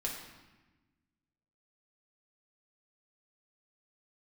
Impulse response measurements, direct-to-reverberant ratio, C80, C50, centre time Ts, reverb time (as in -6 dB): -2.5 dB, 6.0 dB, 3.5 dB, 47 ms, 1.1 s